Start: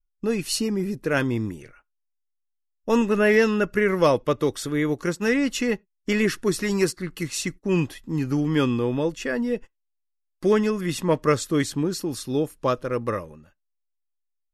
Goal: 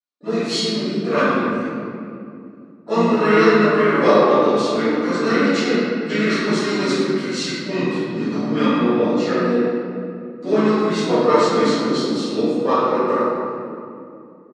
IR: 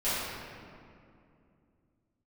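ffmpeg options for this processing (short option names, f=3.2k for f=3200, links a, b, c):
-filter_complex "[0:a]asplit=3[a][b][c];[b]asetrate=33038,aresample=44100,atempo=1.33484,volume=-2dB[d];[c]asetrate=66075,aresample=44100,atempo=0.66742,volume=-15dB[e];[a][d][e]amix=inputs=3:normalize=0,highpass=f=190:w=0.5412,highpass=f=190:w=1.3066,equalizer=f=510:t=q:w=4:g=4,equalizer=f=1.2k:t=q:w=4:g=8,equalizer=f=4.1k:t=q:w=4:g=9,lowpass=f=7.7k:w=0.5412,lowpass=f=7.7k:w=1.3066[f];[1:a]atrim=start_sample=2205[g];[f][g]afir=irnorm=-1:irlink=0,volume=-8.5dB"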